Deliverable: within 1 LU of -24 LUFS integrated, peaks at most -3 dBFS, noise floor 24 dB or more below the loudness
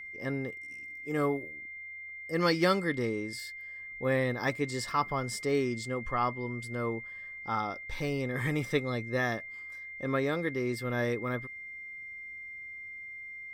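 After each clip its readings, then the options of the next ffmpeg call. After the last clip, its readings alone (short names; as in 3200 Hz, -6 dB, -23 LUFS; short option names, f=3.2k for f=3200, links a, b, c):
steady tone 2100 Hz; tone level -41 dBFS; loudness -33.0 LUFS; peak -13.5 dBFS; loudness target -24.0 LUFS
-> -af "bandreject=f=2.1k:w=30"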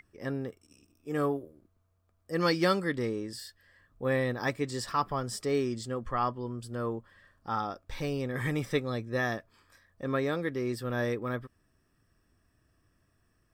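steady tone none; loudness -32.5 LUFS; peak -13.5 dBFS; loudness target -24.0 LUFS
-> -af "volume=8.5dB"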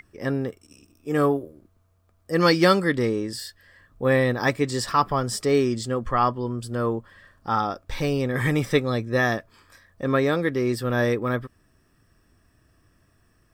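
loudness -24.0 LUFS; peak -5.0 dBFS; noise floor -64 dBFS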